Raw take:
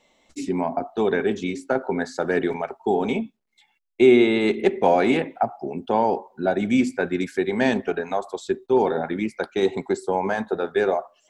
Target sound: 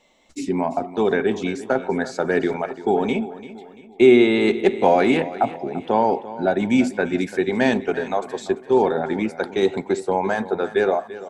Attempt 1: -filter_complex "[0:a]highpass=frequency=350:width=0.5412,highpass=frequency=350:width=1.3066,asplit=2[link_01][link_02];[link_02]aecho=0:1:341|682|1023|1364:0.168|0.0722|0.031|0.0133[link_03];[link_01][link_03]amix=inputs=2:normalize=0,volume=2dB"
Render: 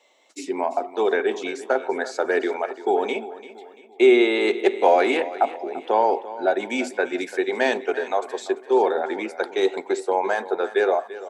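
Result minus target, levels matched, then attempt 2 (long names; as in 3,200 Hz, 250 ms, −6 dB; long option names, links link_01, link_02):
250 Hz band −4.5 dB
-filter_complex "[0:a]asplit=2[link_01][link_02];[link_02]aecho=0:1:341|682|1023|1364:0.168|0.0722|0.031|0.0133[link_03];[link_01][link_03]amix=inputs=2:normalize=0,volume=2dB"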